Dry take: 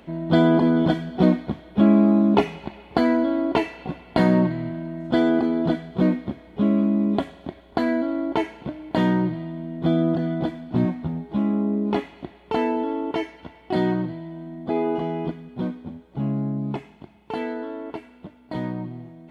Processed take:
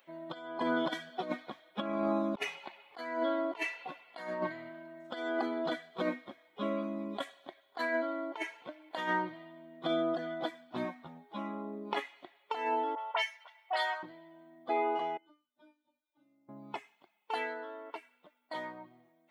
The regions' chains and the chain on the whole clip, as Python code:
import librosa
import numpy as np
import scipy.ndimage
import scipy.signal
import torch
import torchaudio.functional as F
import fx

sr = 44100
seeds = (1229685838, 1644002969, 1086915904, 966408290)

y = fx.chain(x, sr, fx.highpass(hz=590.0, slope=24),
    fx.dispersion(late='highs', ms=46.0, hz=2500.0), at=(12.95, 14.03))
y = fx.chain(y, sr, fx.low_shelf(hz=130.0, db=9.5),
    fx.comb_fb(f0_hz=300.0, decay_s=0.31, harmonics='all', damping=0.0, mix_pct=100),
    fx.band_squash(depth_pct=40), at=(15.17, 16.49))
y = fx.bin_expand(y, sr, power=1.5)
y = scipy.signal.sosfilt(scipy.signal.butter(2, 780.0, 'highpass', fs=sr, output='sos'), y)
y = fx.over_compress(y, sr, threshold_db=-35.0, ratio=-0.5)
y = y * librosa.db_to_amplitude(3.0)